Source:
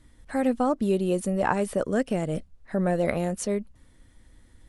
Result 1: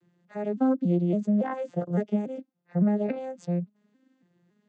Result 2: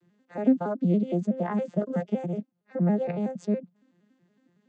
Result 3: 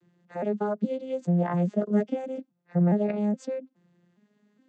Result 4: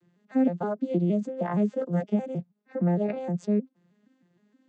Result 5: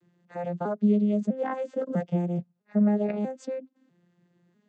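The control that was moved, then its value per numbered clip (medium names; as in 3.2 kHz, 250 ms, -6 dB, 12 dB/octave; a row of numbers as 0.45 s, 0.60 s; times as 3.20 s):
vocoder on a broken chord, a note every: 281 ms, 93 ms, 416 ms, 156 ms, 648 ms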